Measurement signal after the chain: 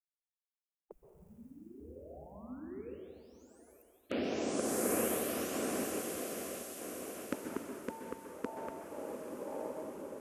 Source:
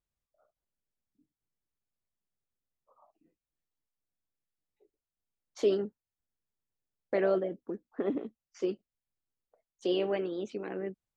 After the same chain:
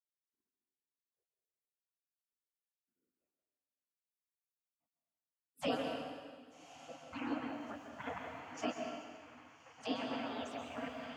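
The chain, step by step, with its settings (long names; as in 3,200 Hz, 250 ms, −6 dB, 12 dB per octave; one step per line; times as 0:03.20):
noise gate −54 dBFS, range −16 dB
high-pass filter 85 Hz 24 dB per octave
high shelf with overshoot 3,000 Hz −6.5 dB, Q 1.5
on a send: feedback delay with all-pass diffusion 1,204 ms, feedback 47%, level −14 dB
on the sum: speech leveller within 4 dB 0.5 s
gate on every frequency bin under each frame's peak −30 dB weak
octave-band graphic EQ 125/250/500/1,000/2,000/4,000 Hz −12/+11/+8/−5/−9/−9 dB
dense smooth reverb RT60 1.7 s, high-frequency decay 0.95×, pre-delay 115 ms, DRR 3 dB
level +15.5 dB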